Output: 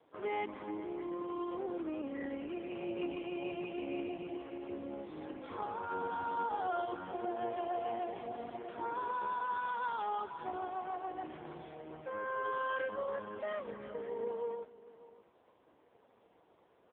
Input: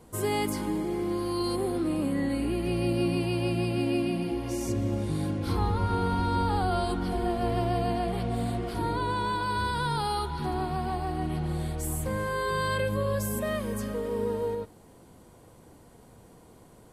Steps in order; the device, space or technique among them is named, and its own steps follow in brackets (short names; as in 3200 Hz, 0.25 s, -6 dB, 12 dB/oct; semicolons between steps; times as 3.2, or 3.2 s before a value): satellite phone (BPF 400–3300 Hz; echo 0.59 s -17.5 dB; gain -5 dB; AMR-NB 4.75 kbps 8000 Hz)